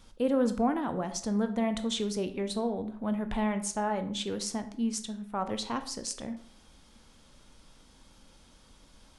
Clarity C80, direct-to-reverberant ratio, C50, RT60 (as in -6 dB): 15.5 dB, 9.0 dB, 12.5 dB, 0.60 s